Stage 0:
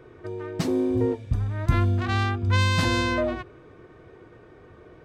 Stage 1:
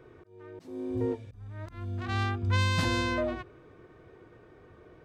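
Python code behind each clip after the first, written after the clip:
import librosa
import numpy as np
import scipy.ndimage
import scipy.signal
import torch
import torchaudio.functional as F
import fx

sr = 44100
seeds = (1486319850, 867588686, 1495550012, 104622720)

y = fx.auto_swell(x, sr, attack_ms=530.0)
y = y * librosa.db_to_amplitude(-5.0)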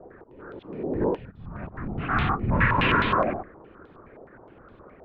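y = fx.freq_compress(x, sr, knee_hz=1100.0, ratio=1.5)
y = fx.whisperise(y, sr, seeds[0])
y = fx.filter_held_lowpass(y, sr, hz=9.6, low_hz=720.0, high_hz=3600.0)
y = y * librosa.db_to_amplitude(3.5)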